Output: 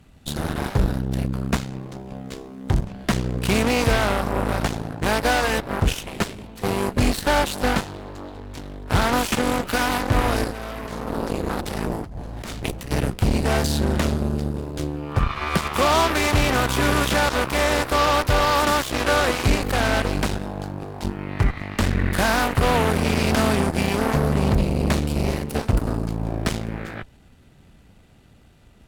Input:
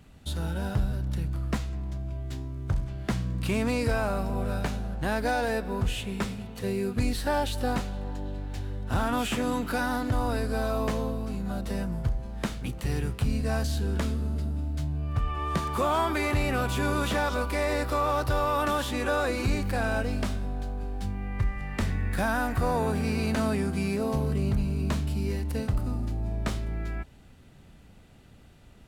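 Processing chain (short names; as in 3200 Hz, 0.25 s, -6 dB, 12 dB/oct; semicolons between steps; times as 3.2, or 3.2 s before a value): added harmonics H 7 -13 dB, 8 -20 dB, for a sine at -16.5 dBFS; 10.44–12.91 negative-ratio compressor -35 dBFS, ratio -1; gain +6.5 dB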